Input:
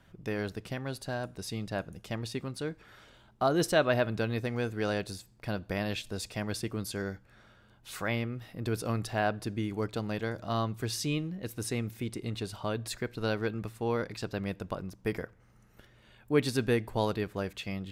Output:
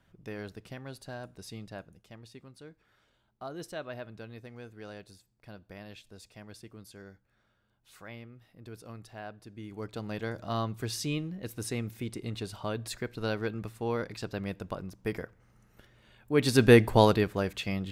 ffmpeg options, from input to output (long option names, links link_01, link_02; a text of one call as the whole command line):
ffmpeg -i in.wav -af "volume=18.5dB,afade=type=out:start_time=1.56:duration=0.51:silence=0.421697,afade=type=in:start_time=9.51:duration=0.8:silence=0.223872,afade=type=in:start_time=16.34:duration=0.45:silence=0.251189,afade=type=out:start_time=16.79:duration=0.57:silence=0.446684" out.wav